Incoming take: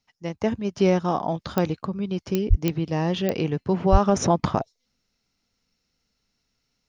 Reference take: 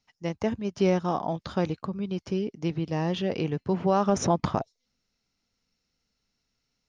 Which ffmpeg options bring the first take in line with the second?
-filter_complex "[0:a]adeclick=t=4,asplit=3[a][b][c];[a]afade=t=out:st=2.49:d=0.02[d];[b]highpass=f=140:w=0.5412,highpass=f=140:w=1.3066,afade=t=in:st=2.49:d=0.02,afade=t=out:st=2.61:d=0.02[e];[c]afade=t=in:st=2.61:d=0.02[f];[d][e][f]amix=inputs=3:normalize=0,asplit=3[g][h][i];[g]afade=t=out:st=3.91:d=0.02[j];[h]highpass=f=140:w=0.5412,highpass=f=140:w=1.3066,afade=t=in:st=3.91:d=0.02,afade=t=out:st=4.03:d=0.02[k];[i]afade=t=in:st=4.03:d=0.02[l];[j][k][l]amix=inputs=3:normalize=0,asetnsamples=n=441:p=0,asendcmd='0.43 volume volume -3.5dB',volume=0dB"

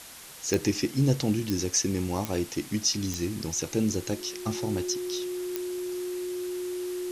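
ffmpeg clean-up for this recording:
-af "adeclick=t=4,bandreject=f=360:w=30,afftdn=nr=30:nf=-41"

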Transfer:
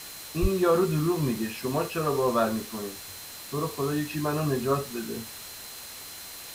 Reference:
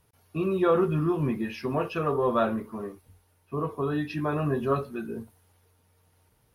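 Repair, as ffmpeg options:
-filter_complex "[0:a]bandreject=f=4.1k:w=30,asplit=3[a][b][c];[a]afade=t=out:st=0.41:d=0.02[d];[b]highpass=f=140:w=0.5412,highpass=f=140:w=1.3066,afade=t=in:st=0.41:d=0.02,afade=t=out:st=0.53:d=0.02[e];[c]afade=t=in:st=0.53:d=0.02[f];[d][e][f]amix=inputs=3:normalize=0,afwtdn=0.0089"

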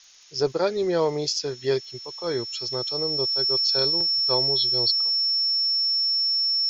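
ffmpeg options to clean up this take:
-af "adeclick=t=4,bandreject=f=5.4k:w=30,afftdn=nr=30:nf=-40"

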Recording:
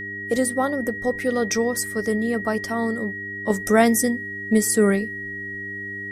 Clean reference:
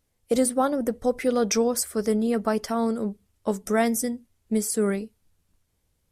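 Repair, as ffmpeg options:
-af "bandreject=f=99.7:t=h:w=4,bandreject=f=199.4:t=h:w=4,bandreject=f=299.1:t=h:w=4,bandreject=f=398.8:t=h:w=4,bandreject=f=1.9k:w=30,asetnsamples=n=441:p=0,asendcmd='3.5 volume volume -6dB',volume=0dB"

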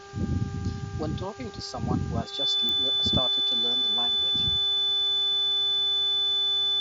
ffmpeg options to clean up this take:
-af "adeclick=t=4,bandreject=f=398.4:t=h:w=4,bandreject=f=796.8:t=h:w=4,bandreject=f=1.1952k:t=h:w=4,bandreject=f=1.5936k:t=h:w=4,bandreject=f=3.5k:w=30,afwtdn=0.004"

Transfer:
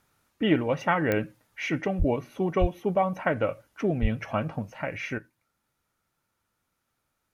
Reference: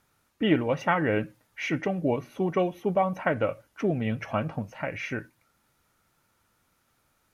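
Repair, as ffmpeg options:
-filter_complex "[0:a]adeclick=t=4,asplit=3[a][b][c];[a]afade=t=out:st=1.98:d=0.02[d];[b]highpass=f=140:w=0.5412,highpass=f=140:w=1.3066,afade=t=in:st=1.98:d=0.02,afade=t=out:st=2.1:d=0.02[e];[c]afade=t=in:st=2.1:d=0.02[f];[d][e][f]amix=inputs=3:normalize=0,asplit=3[g][h][i];[g]afade=t=out:st=2.6:d=0.02[j];[h]highpass=f=140:w=0.5412,highpass=f=140:w=1.3066,afade=t=in:st=2.6:d=0.02,afade=t=out:st=2.72:d=0.02[k];[i]afade=t=in:st=2.72:d=0.02[l];[j][k][l]amix=inputs=3:normalize=0,asplit=3[m][n][o];[m]afade=t=out:st=4.01:d=0.02[p];[n]highpass=f=140:w=0.5412,highpass=f=140:w=1.3066,afade=t=in:st=4.01:d=0.02,afade=t=out:st=4.13:d=0.02[q];[o]afade=t=in:st=4.13:d=0.02[r];[p][q][r]amix=inputs=3:normalize=0,asetnsamples=n=441:p=0,asendcmd='5.18 volume volume 8.5dB',volume=0dB"

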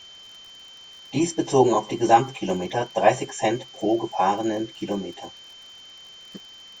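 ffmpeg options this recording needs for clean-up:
-af "adeclick=t=4,bandreject=f=3.1k:w=30,afwtdn=0.0035"

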